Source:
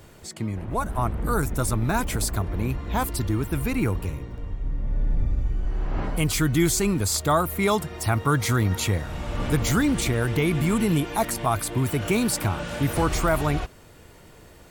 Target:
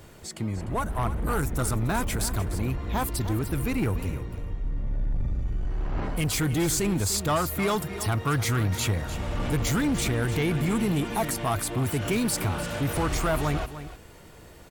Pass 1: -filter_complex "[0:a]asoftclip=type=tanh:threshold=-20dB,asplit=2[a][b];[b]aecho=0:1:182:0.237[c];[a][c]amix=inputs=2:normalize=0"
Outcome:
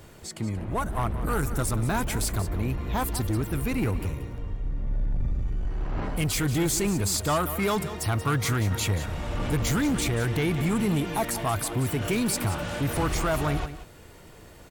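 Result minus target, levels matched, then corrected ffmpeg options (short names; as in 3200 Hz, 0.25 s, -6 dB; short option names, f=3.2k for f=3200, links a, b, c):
echo 0.118 s early
-filter_complex "[0:a]asoftclip=type=tanh:threshold=-20dB,asplit=2[a][b];[b]aecho=0:1:300:0.237[c];[a][c]amix=inputs=2:normalize=0"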